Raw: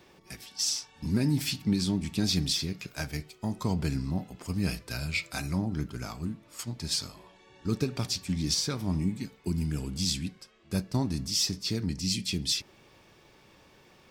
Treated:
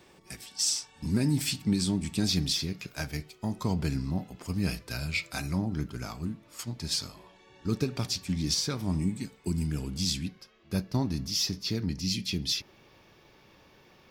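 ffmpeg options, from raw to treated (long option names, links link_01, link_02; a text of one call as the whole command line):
ffmpeg -i in.wav -af "asetnsamples=nb_out_samples=441:pad=0,asendcmd='2.28 equalizer g -2.5;8.83 equalizer g 8;9.67 equalizer g -3.5;10.27 equalizer g -14',equalizer=frequency=8200:width_type=o:width=0.3:gain=7.5" out.wav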